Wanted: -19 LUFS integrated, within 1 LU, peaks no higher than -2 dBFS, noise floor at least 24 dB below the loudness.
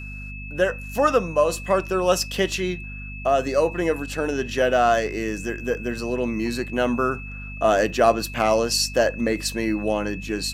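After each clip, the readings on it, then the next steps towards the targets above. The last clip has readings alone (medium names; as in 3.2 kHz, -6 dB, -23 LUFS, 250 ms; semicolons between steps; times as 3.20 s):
hum 50 Hz; highest harmonic 250 Hz; hum level -34 dBFS; steady tone 2.6 kHz; tone level -37 dBFS; loudness -22.5 LUFS; peak level -4.5 dBFS; loudness target -19.0 LUFS
-> hum notches 50/100/150/200/250 Hz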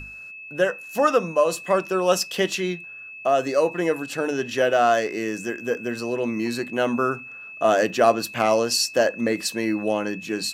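hum not found; steady tone 2.6 kHz; tone level -37 dBFS
-> band-stop 2.6 kHz, Q 30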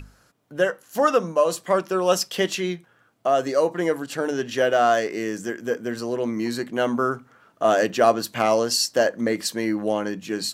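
steady tone not found; loudness -23.0 LUFS; peak level -5.0 dBFS; loudness target -19.0 LUFS
-> trim +4 dB; peak limiter -2 dBFS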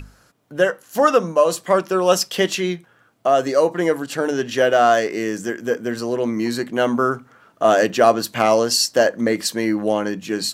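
loudness -19.0 LUFS; peak level -2.0 dBFS; noise floor -56 dBFS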